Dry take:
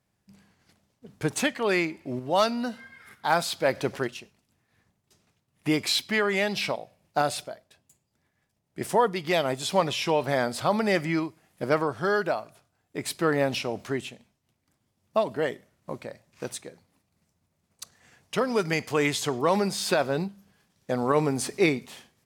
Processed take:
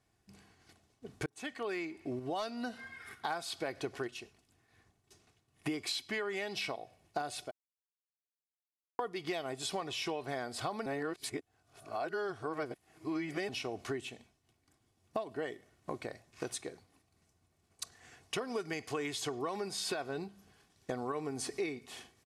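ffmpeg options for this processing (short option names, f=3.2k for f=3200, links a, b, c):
-filter_complex "[0:a]asplit=6[a][b][c][d][e][f];[a]atrim=end=1.26,asetpts=PTS-STARTPTS,afade=t=out:st=1.256:d=0.004:c=hsin[g];[b]atrim=start=1.26:end=7.51,asetpts=PTS-STARTPTS,afade=t=in:d=1.51:c=qsin,afade=t=out:st=6.246:d=0.004:c=hsin[h];[c]atrim=start=7.51:end=8.99,asetpts=PTS-STARTPTS,volume=0[i];[d]atrim=start=8.99:end=10.862,asetpts=PTS-STARTPTS,afade=t=in:d=0.004:c=hsin[j];[e]atrim=start=10.858:end=13.492,asetpts=PTS-STARTPTS,areverse[k];[f]atrim=start=13.488[l];[g][h][i][j]concat=n=4:v=0:a=1[m];[m][k]acrossfade=d=0.004:c1=hsin:c2=hsin[n];[n][l]acrossfade=d=0.004:c1=hsin:c2=hsin,lowpass=f=12k:w=0.5412,lowpass=f=12k:w=1.3066,aecho=1:1:2.7:0.49,acompressor=threshold=-35dB:ratio=6"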